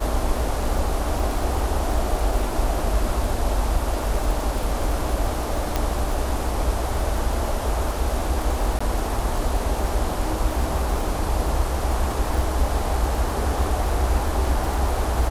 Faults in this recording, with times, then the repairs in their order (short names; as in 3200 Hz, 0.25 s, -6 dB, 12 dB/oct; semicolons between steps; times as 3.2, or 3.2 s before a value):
crackle 41/s -27 dBFS
5.76 pop
8.79–8.8 gap 15 ms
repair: de-click; interpolate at 8.79, 15 ms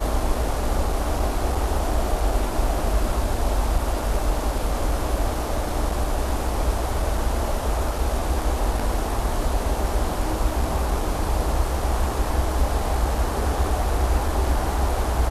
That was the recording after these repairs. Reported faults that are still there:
none